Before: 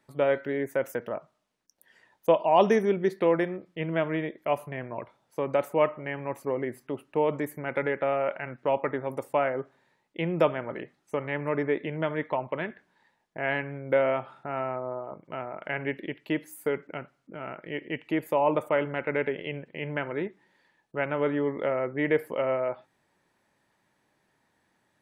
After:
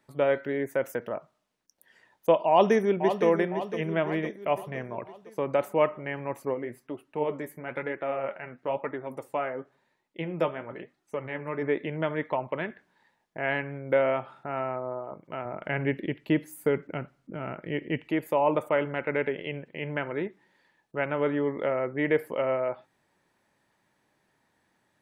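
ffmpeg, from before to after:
ffmpeg -i in.wav -filter_complex "[0:a]asplit=2[link_01][link_02];[link_02]afade=type=in:start_time=2.49:duration=0.01,afade=type=out:start_time=3.25:duration=0.01,aecho=0:1:510|1020|1530|2040|2550|3060:0.354813|0.195147|0.107331|0.0590321|0.0324676|0.0178572[link_03];[link_01][link_03]amix=inputs=2:normalize=0,asplit=3[link_04][link_05][link_06];[link_04]afade=type=out:start_time=6.53:duration=0.02[link_07];[link_05]flanger=delay=2.7:depth=9.7:regen=49:speed=1:shape=sinusoidal,afade=type=in:start_time=6.53:duration=0.02,afade=type=out:start_time=11.61:duration=0.02[link_08];[link_06]afade=type=in:start_time=11.61:duration=0.02[link_09];[link_07][link_08][link_09]amix=inputs=3:normalize=0,asettb=1/sr,asplit=3[link_10][link_11][link_12];[link_10]atrim=end=15.454[link_13];[link_11]atrim=start=15.45:end=18.08,asetpts=PTS-STARTPTS,afade=type=in:duration=0.004:curve=qsin,afade=type=out:start_time=2.626:duration=0.004:curve=qsin,lowshelf=frequency=270:gain=10[link_14];[link_12]atrim=start=18.076[link_15];[link_13][link_14]acrossfade=duration=0.004:curve1=hsin:curve2=qsin[link_16];[link_16][link_15]acrossfade=duration=0.004:curve1=qsin:curve2=hsin" out.wav

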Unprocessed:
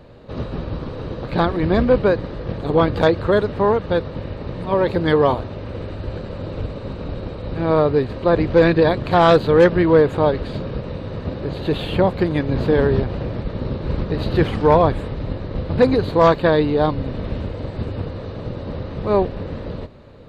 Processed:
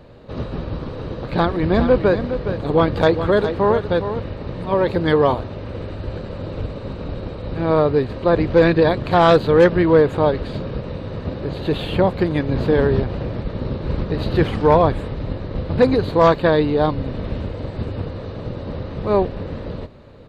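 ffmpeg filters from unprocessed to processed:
ffmpeg -i in.wav -filter_complex "[0:a]asplit=3[link_01][link_02][link_03];[link_01]afade=type=out:start_time=1.73:duration=0.02[link_04];[link_02]aecho=1:1:413:0.335,afade=type=in:start_time=1.73:duration=0.02,afade=type=out:start_time=4.29:duration=0.02[link_05];[link_03]afade=type=in:start_time=4.29:duration=0.02[link_06];[link_04][link_05][link_06]amix=inputs=3:normalize=0" out.wav

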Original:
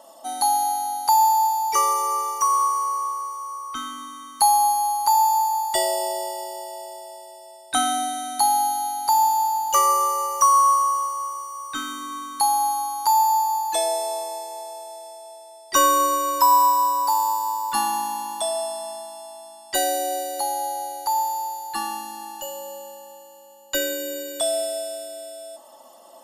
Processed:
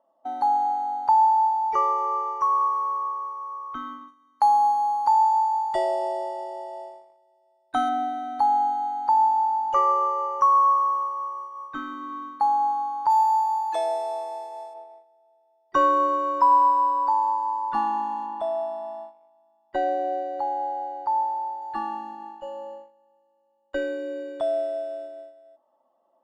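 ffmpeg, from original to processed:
ffmpeg -i in.wav -filter_complex "[0:a]asettb=1/sr,asplit=3[link_01][link_02][link_03];[link_01]atrim=end=4.084[link_04];[link_02]atrim=start=4.08:end=7.89,asetpts=PTS-STARTPTS,afade=type=in:duration=0.004:curve=qsin,afade=type=out:start_time=3.806:duration=0.004:curve=qsin,bass=frequency=250:gain=-2,treble=frequency=4000:gain=9[link_05];[link_03]atrim=start=7.886[link_06];[link_04][link_05]acrossfade=duration=0.004:curve1=hsin:curve2=qsin[link_07];[link_07][link_06]acrossfade=duration=0.004:curve1=qsin:curve2=hsin,asplit=3[link_08][link_09][link_10];[link_08]afade=type=out:start_time=13.09:duration=0.02[link_11];[link_09]aemphasis=mode=production:type=riaa,afade=type=in:start_time=13.09:duration=0.02,afade=type=out:start_time=14.73:duration=0.02[link_12];[link_10]afade=type=in:start_time=14.73:duration=0.02[link_13];[link_11][link_12][link_13]amix=inputs=3:normalize=0,asettb=1/sr,asplit=3[link_14][link_15][link_16];[link_14]atrim=end=18.264[link_17];[link_15]atrim=start=18.26:end=21.62,asetpts=PTS-STARTPTS,afade=type=in:duration=0.004:curve=qsin,afade=type=out:start_time=3.356:duration=0.004:curve=qsin,lowpass=frequency=3500:poles=1[link_18];[link_16]atrim=start=21.616[link_19];[link_17][link_18]acrossfade=duration=0.004:curve1=hsin:curve2=qsin[link_20];[link_20][link_19]acrossfade=duration=0.004:curve1=qsin:curve2=hsin,lowpass=1300,agate=range=-19dB:threshold=-37dB:ratio=16:detection=peak" out.wav

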